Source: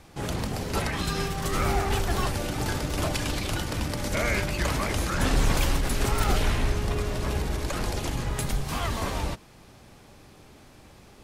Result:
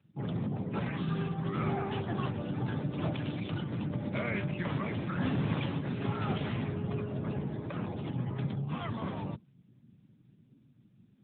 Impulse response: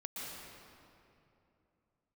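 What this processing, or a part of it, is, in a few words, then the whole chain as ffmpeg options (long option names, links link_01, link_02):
mobile call with aggressive noise cancelling: -af "highpass=frequency=120:width=0.5412,highpass=frequency=120:width=1.3066,bass=frequency=250:gain=10,treble=frequency=4000:gain=6,afftdn=noise_reduction=25:noise_floor=-37,volume=-7dB" -ar 8000 -c:a libopencore_amrnb -b:a 10200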